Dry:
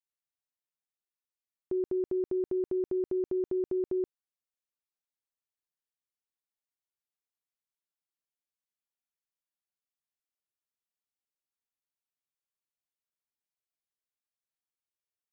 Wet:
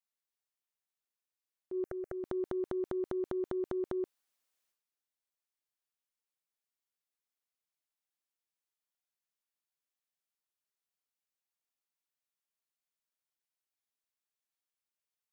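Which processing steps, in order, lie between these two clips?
low-shelf EQ 240 Hz −11.5 dB
transient designer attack −6 dB, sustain +11 dB
0:01.84–0:02.24: phaser with its sweep stopped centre 970 Hz, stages 6

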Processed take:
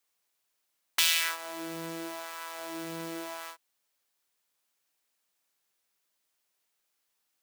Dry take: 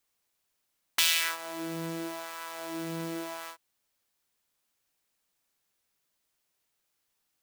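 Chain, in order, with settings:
low-shelf EQ 200 Hz −11.5 dB

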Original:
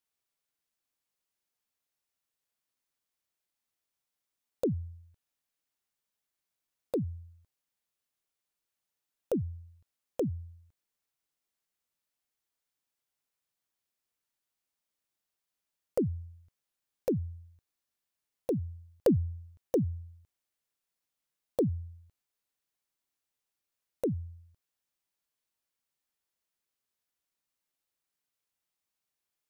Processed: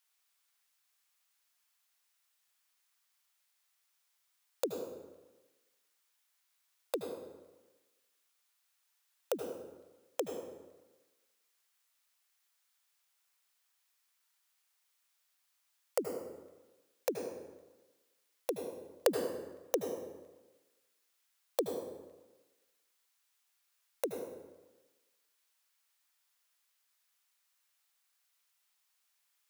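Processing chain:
high-pass filter 980 Hz 12 dB per octave
on a send: convolution reverb RT60 1.2 s, pre-delay 70 ms, DRR 4 dB
on the sum: level +9 dB

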